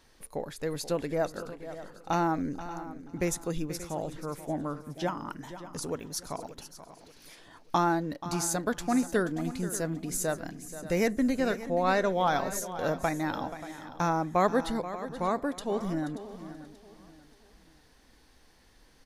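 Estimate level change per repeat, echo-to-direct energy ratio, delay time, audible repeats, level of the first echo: repeats not evenly spaced, −11.0 dB, 481 ms, 6, −13.5 dB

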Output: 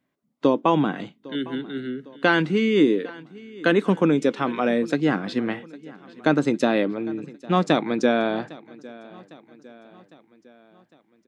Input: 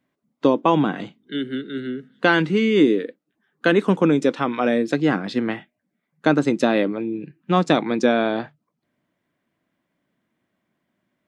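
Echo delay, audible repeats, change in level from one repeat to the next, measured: 805 ms, 3, −5.5 dB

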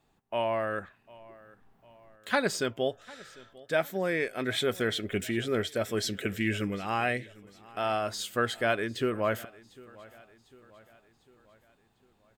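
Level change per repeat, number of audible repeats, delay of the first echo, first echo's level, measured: −6.0 dB, 3, 750 ms, −22.0 dB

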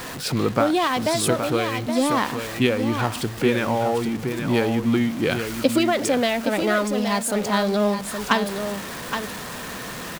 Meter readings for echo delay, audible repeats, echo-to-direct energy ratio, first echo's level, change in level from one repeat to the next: 820 ms, 1, −7.5 dB, −7.5 dB, repeats not evenly spaced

